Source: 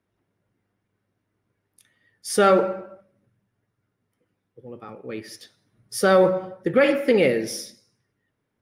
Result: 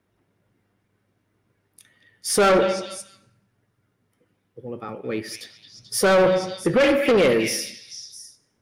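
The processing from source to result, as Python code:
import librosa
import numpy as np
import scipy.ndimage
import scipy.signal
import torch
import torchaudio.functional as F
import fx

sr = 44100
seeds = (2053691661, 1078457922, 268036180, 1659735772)

y = fx.vibrato(x, sr, rate_hz=2.3, depth_cents=7.4)
y = fx.echo_stepped(y, sr, ms=218, hz=2900.0, octaves=0.7, feedback_pct=70, wet_db=-6.0)
y = 10.0 ** (-19.0 / 20.0) * np.tanh(y / 10.0 ** (-19.0 / 20.0))
y = F.gain(torch.from_numpy(y), 6.0).numpy()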